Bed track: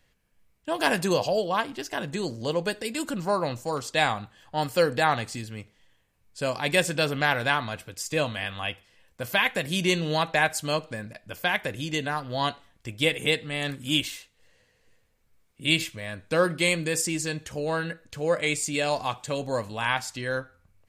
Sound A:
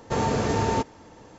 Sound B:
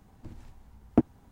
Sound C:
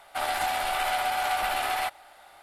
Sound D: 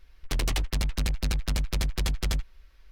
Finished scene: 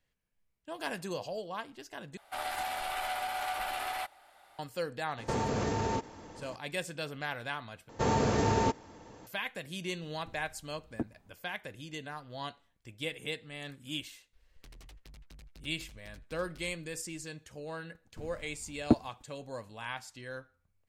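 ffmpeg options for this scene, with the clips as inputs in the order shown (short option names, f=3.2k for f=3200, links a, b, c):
-filter_complex "[1:a]asplit=2[a][b];[2:a]asplit=2[c][d];[0:a]volume=-13.5dB[e];[a]acompressor=threshold=-27dB:ratio=6:attack=3.2:release=140:knee=1:detection=peak[f];[c]alimiter=limit=-13.5dB:level=0:latency=1:release=26[g];[4:a]acompressor=threshold=-40dB:ratio=6:attack=3.2:release=140:knee=1:detection=peak[h];[d]agate=range=-23dB:threshold=-53dB:ratio=16:release=72:detection=rms[i];[e]asplit=3[j][k][l];[j]atrim=end=2.174[m];[3:a]atrim=end=2.42,asetpts=PTS-STARTPTS,volume=-8dB[n];[k]atrim=start=4.586:end=7.894[o];[b]atrim=end=1.38,asetpts=PTS-STARTPTS,volume=-3.5dB[p];[l]atrim=start=9.266[q];[f]atrim=end=1.38,asetpts=PTS-STARTPTS,volume=-0.5dB,afade=t=in:d=0.004:c=hsin,afade=t=out:st=1.376:d=0.004:c=hsin,adelay=5180[r];[g]atrim=end=1.31,asetpts=PTS-STARTPTS,volume=-9dB,afade=t=in:d=0.004:c=hsin,afade=t=out:st=1.306:d=0.004:c=hsin,adelay=441882S[s];[h]atrim=end=2.91,asetpts=PTS-STARTPTS,volume=-12dB,afade=t=in:d=0.004:c=hsin,afade=t=out:st=2.906:d=0.004:c=hsin,adelay=14330[t];[i]atrim=end=1.31,asetpts=PTS-STARTPTS,volume=-2dB,afade=t=in:d=0.004:c=hsin,afade=t=out:st=1.306:d=0.004:c=hsin,adelay=17930[u];[m][n]acrossfade=d=0.004:c1=hsin:c2=hsin[v];[v][o]acrossfade=d=0.004:c1=hsin:c2=hsin[w];[w][p]acrossfade=d=0.004:c1=hsin:c2=hsin[x];[x][q]acrossfade=d=0.004:c1=hsin:c2=hsin[y];[y][r][s][t][u]amix=inputs=5:normalize=0"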